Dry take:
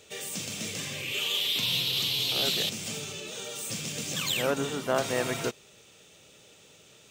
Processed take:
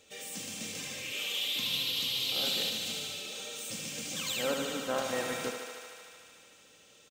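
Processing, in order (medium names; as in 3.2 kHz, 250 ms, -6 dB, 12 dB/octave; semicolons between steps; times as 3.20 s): comb 3.8 ms, depth 46%; on a send: thinning echo 75 ms, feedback 84%, high-pass 260 Hz, level -6.5 dB; on the sum: trim -7 dB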